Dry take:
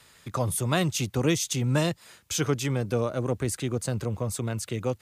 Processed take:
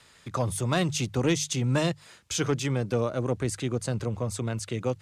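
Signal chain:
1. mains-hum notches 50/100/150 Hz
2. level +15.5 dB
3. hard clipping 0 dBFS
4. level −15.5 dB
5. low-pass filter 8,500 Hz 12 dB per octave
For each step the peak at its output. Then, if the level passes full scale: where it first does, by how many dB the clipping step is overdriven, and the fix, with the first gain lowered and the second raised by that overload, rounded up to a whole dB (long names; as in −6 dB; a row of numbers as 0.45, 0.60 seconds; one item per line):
−10.5, +5.0, 0.0, −15.5, −15.5 dBFS
step 2, 5.0 dB
step 2 +10.5 dB, step 4 −10.5 dB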